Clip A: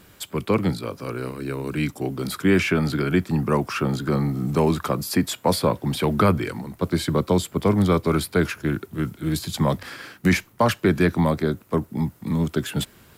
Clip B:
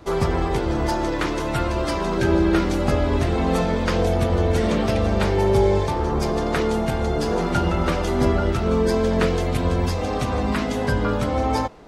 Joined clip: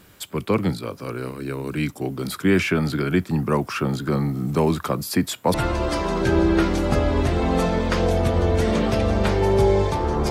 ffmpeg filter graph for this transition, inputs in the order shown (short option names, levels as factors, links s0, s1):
-filter_complex "[0:a]apad=whole_dur=10.3,atrim=end=10.3,atrim=end=5.542[s0];[1:a]atrim=start=1.498:end=6.26[s1];[s0][s1]acrossfade=d=0.004:c1=hsin:c2=hsin"